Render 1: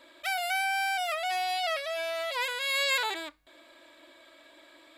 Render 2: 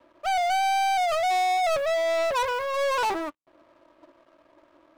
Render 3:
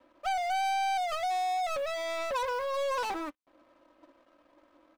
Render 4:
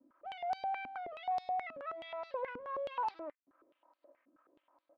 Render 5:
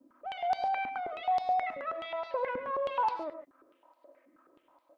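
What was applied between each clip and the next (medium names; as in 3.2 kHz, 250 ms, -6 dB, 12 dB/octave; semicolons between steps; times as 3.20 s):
elliptic band-pass 110–1200 Hz, stop band 40 dB; waveshaping leveller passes 5; upward expansion 2.5:1, over -40 dBFS; trim +4 dB
comb 3.9 ms, depth 50%; compression, threshold -24 dBFS, peak gain reduction 4.5 dB; trim -5 dB
distance through air 410 m; step-sequenced band-pass 9.4 Hz 260–4600 Hz; trim +4 dB
gated-style reverb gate 160 ms rising, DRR 8.5 dB; trim +6 dB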